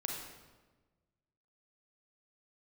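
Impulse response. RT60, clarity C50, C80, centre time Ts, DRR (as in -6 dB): 1.3 s, 2.0 dB, 4.5 dB, 58 ms, 0.0 dB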